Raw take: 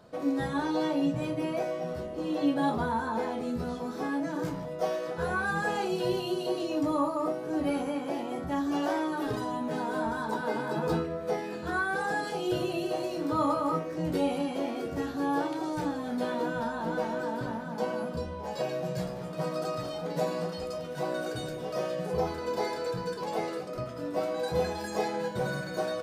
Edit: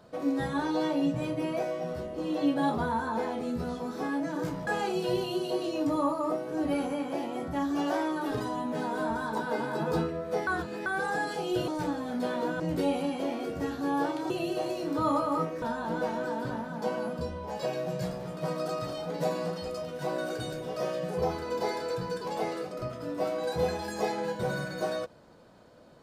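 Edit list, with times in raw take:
0:04.67–0:05.63: remove
0:11.43–0:11.82: reverse
0:12.64–0:13.96: swap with 0:15.66–0:16.58

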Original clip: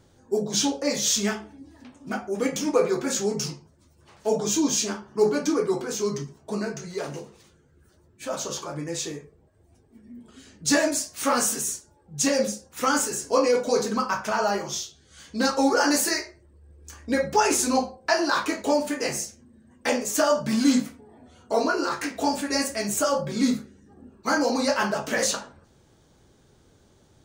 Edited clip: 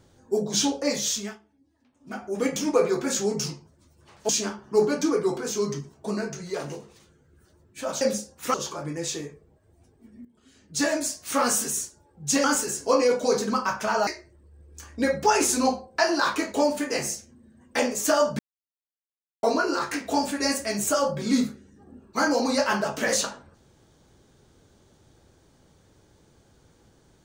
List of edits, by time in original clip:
0:00.90–0:02.41: duck −19 dB, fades 0.49 s
0:04.29–0:04.73: remove
0:10.16–0:11.65: fade in equal-power, from −16 dB
0:12.35–0:12.88: move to 0:08.45
0:14.51–0:16.17: remove
0:20.49–0:21.53: silence

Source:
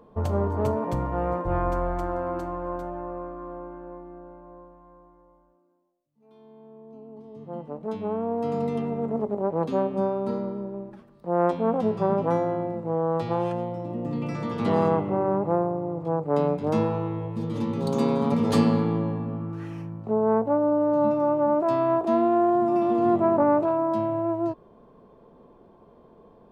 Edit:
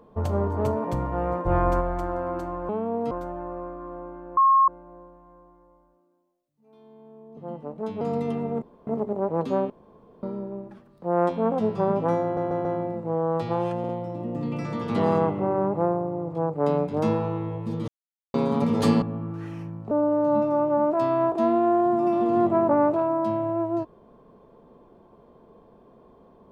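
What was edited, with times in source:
0:01.46–0:01.81: clip gain +3.5 dB
0:03.95–0:04.26: beep over 1,080 Hz −14 dBFS
0:06.95–0:07.42: remove
0:08.06–0:08.48: move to 0:02.69
0:09.09: splice in room tone 0.25 s
0:09.92–0:10.45: fill with room tone
0:12.45: stutter 0.14 s, 4 plays
0:13.59: stutter 0.05 s, 3 plays
0:17.58–0:18.04: silence
0:18.72–0:19.21: remove
0:20.10–0:20.60: remove

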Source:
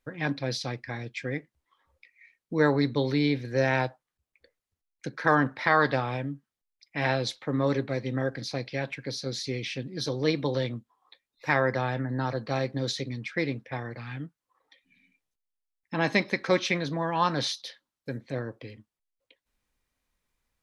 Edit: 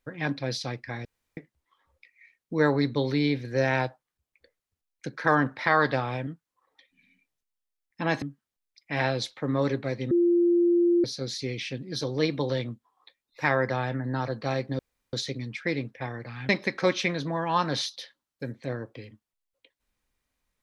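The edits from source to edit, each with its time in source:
0:01.05–0:01.37: fill with room tone
0:08.16–0:09.09: beep over 346 Hz −18 dBFS
0:12.84: splice in room tone 0.34 s
0:14.20–0:16.15: move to 0:06.27

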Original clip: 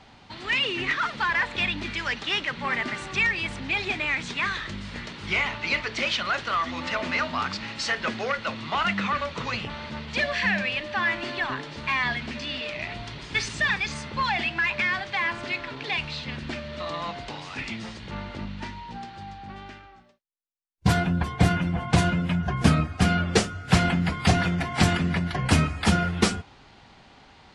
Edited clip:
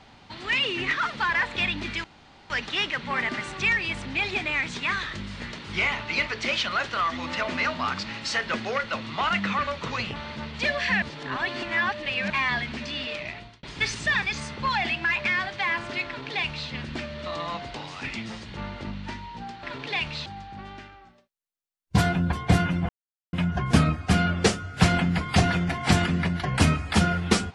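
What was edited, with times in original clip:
0:02.04: splice in room tone 0.46 s
0:10.56–0:11.84: reverse
0:12.70–0:13.17: fade out
0:15.60–0:16.23: duplicate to 0:19.17
0:21.80–0:22.24: silence

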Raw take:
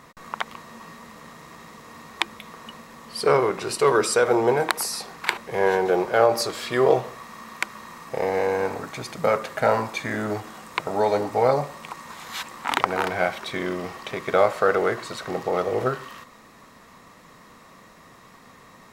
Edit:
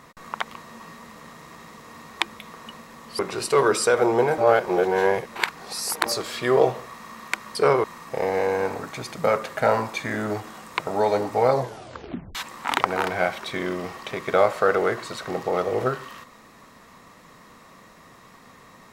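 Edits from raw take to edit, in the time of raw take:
0:03.19–0:03.48: move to 0:07.84
0:04.67–0:06.35: reverse
0:11.54: tape stop 0.81 s

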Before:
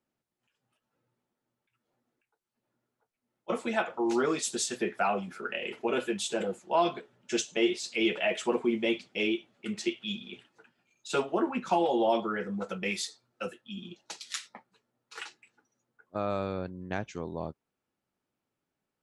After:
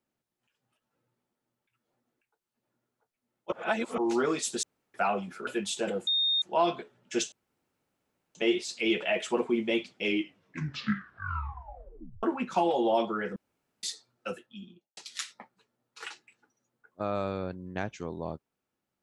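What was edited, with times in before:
0:03.52–0:03.98: reverse
0:04.63–0:04.94: fill with room tone
0:05.47–0:06.00: remove
0:06.60: insert tone 3,680 Hz −23.5 dBFS 0.35 s
0:07.50: splice in room tone 1.03 s
0:09.18: tape stop 2.20 s
0:12.51–0:12.98: fill with room tone
0:13.50–0:14.12: fade out and dull

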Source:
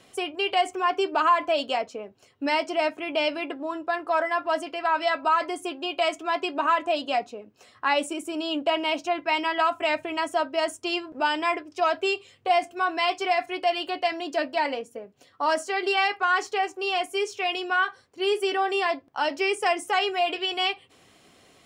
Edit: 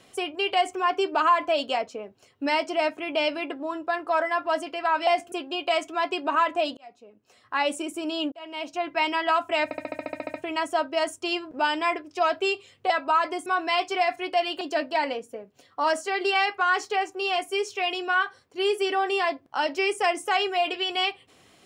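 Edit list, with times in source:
0:05.07–0:05.63: swap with 0:12.51–0:12.76
0:07.08–0:08.11: fade in
0:08.63–0:09.28: fade in
0:09.95: stutter 0.07 s, 11 plays
0:13.91–0:14.23: remove

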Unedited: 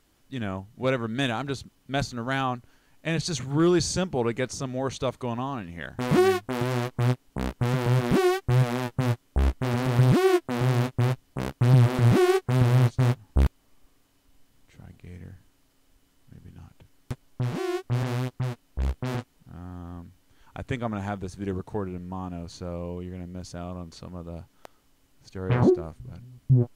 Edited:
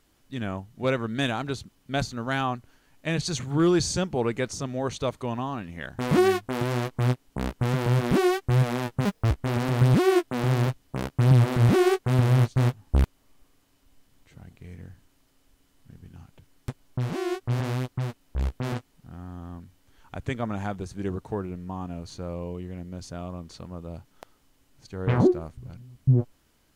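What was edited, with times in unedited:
0:09.05–0:09.48: play speed 168%
0:10.84–0:11.09: remove

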